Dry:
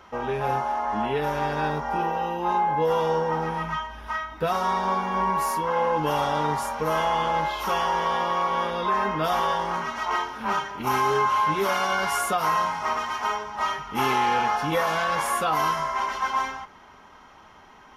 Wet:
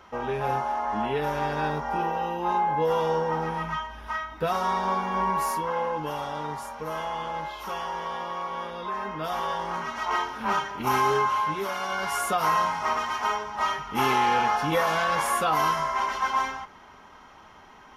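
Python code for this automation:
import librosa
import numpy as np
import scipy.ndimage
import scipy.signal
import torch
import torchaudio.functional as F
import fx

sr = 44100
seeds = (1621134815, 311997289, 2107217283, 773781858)

y = fx.gain(x, sr, db=fx.line((5.51, -1.5), (6.18, -8.0), (9.02, -8.0), (10.25, 0.0), (11.07, 0.0), (11.73, -7.0), (12.43, 0.0)))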